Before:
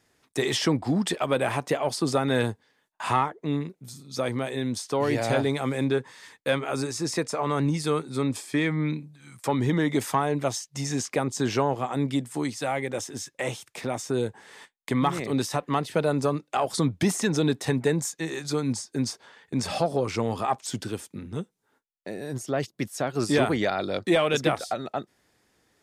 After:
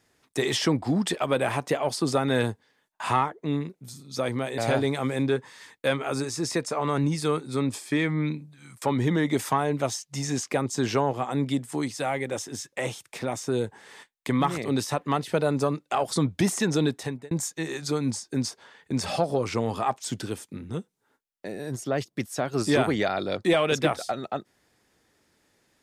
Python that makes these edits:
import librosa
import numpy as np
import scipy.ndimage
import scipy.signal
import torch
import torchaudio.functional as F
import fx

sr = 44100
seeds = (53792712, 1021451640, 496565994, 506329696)

y = fx.edit(x, sr, fx.cut(start_s=4.58, length_s=0.62),
    fx.fade_out_span(start_s=17.45, length_s=0.48), tone=tone)